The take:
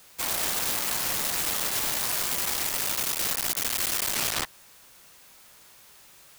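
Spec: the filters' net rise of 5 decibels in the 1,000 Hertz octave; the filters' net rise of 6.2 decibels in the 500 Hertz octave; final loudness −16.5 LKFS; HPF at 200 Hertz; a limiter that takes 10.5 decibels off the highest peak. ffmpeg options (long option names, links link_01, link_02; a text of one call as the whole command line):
ffmpeg -i in.wav -af "highpass=200,equalizer=frequency=500:width_type=o:gain=6.5,equalizer=frequency=1000:width_type=o:gain=4.5,volume=16dB,alimiter=limit=-9dB:level=0:latency=1" out.wav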